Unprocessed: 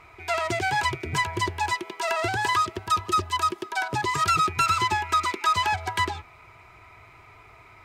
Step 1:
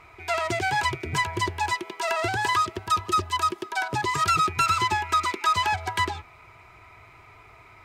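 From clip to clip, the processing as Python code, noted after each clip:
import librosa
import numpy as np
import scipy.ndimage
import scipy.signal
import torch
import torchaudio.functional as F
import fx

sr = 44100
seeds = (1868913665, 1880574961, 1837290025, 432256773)

y = x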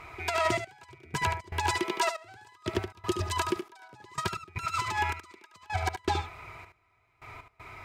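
y = fx.over_compress(x, sr, threshold_db=-28.0, ratio=-0.5)
y = fx.step_gate(y, sr, bpm=79, pattern='xxx...x.', floor_db=-24.0, edge_ms=4.5)
y = y + 10.0 ** (-8.5 / 20.0) * np.pad(y, (int(73 * sr / 1000.0), 0))[:len(y)]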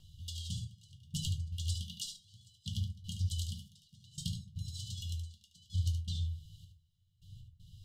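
y = fx.brickwall_bandstop(x, sr, low_hz=210.0, high_hz=2800.0)
y = fx.rotary(y, sr, hz=0.7)
y = fx.room_shoebox(y, sr, seeds[0], volume_m3=120.0, walls='furnished', distance_m=1.1)
y = y * librosa.db_to_amplitude(-2.0)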